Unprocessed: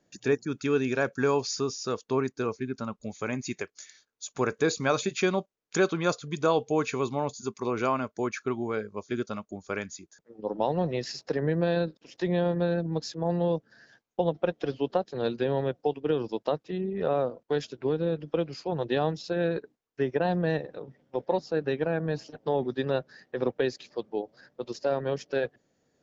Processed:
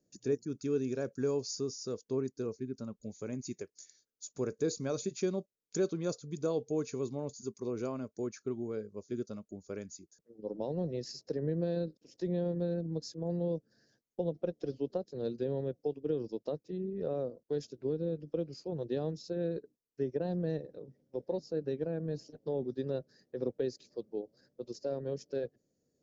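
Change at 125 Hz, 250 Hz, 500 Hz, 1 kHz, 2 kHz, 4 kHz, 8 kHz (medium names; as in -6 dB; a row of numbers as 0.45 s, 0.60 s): -6.0 dB, -6.0 dB, -7.0 dB, -17.5 dB, -19.5 dB, -10.5 dB, no reading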